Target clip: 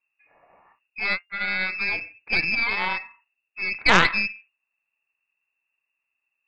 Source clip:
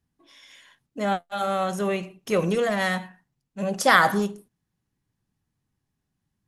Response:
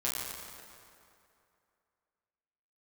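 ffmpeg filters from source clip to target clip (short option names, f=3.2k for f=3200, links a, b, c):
-af "lowpass=f=2.4k:t=q:w=0.5098,lowpass=f=2.4k:t=q:w=0.6013,lowpass=f=2.4k:t=q:w=0.9,lowpass=f=2.4k:t=q:w=2.563,afreqshift=-2800,aeval=exprs='0.708*(cos(1*acos(clip(val(0)/0.708,-1,1)))-cos(1*PI/2))+0.251*(cos(4*acos(clip(val(0)/0.708,-1,1)))-cos(4*PI/2))':c=same,volume=-1.5dB"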